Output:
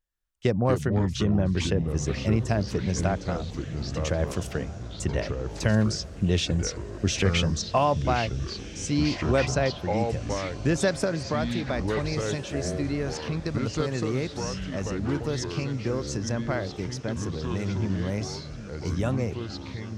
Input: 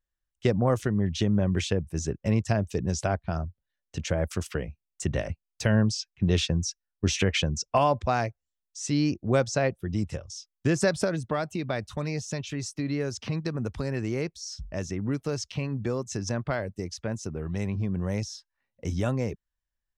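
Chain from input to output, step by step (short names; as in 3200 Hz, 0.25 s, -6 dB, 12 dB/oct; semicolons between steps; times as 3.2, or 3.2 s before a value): diffused feedback echo 1.576 s, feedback 41%, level -15 dB; echoes that change speed 0.122 s, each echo -4 st, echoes 3, each echo -6 dB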